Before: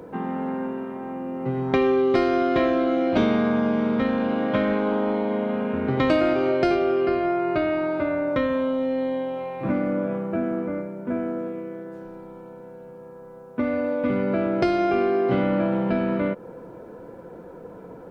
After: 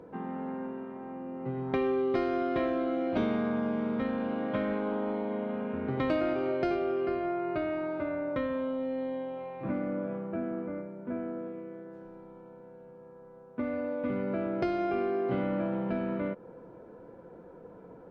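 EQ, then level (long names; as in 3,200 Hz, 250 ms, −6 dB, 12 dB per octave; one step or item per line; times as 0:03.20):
low-pass filter 3,100 Hz 6 dB per octave
−8.5 dB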